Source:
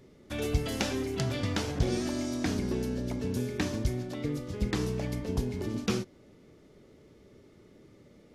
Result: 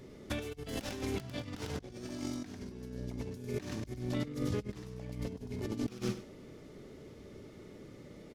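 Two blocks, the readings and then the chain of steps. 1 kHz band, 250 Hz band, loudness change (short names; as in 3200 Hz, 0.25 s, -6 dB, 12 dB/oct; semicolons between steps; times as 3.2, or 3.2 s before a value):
-8.0 dB, -7.0 dB, -7.5 dB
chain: tracing distortion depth 0.085 ms; feedback echo 98 ms, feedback 21%, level -6.5 dB; negative-ratio compressor -36 dBFS, ratio -0.5; gain -2 dB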